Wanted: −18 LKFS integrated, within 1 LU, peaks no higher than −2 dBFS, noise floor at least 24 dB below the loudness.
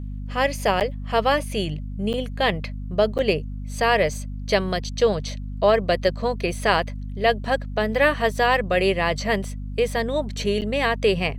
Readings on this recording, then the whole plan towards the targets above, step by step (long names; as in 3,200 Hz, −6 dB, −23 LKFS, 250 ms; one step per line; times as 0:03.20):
number of dropouts 4; longest dropout 8.6 ms; mains hum 50 Hz; hum harmonics up to 250 Hz; level of the hum −29 dBFS; integrated loudness −23.0 LKFS; sample peak −4.5 dBFS; target loudness −18.0 LKFS
→ repair the gap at 0:00.80/0:02.13/0:03.18/0:10.61, 8.6 ms
hum removal 50 Hz, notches 5
level +5 dB
brickwall limiter −2 dBFS